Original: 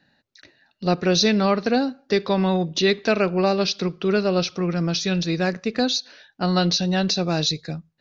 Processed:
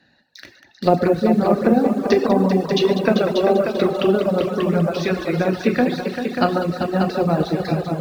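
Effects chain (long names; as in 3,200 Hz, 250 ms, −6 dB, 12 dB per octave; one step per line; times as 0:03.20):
high-pass filter 49 Hz 12 dB per octave
treble cut that deepens with the level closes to 720 Hz, closed at −17 dBFS
harmonic and percussive parts rebalanced percussive +6 dB
echo machine with several playback heads 196 ms, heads all three, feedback 41%, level −8.5 dB
in parallel at −11.5 dB: bit-depth reduction 6 bits, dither none
on the sum: reverb whose tail is shaped and stops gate 170 ms flat, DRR 2.5 dB
reverb reduction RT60 0.92 s
level +1 dB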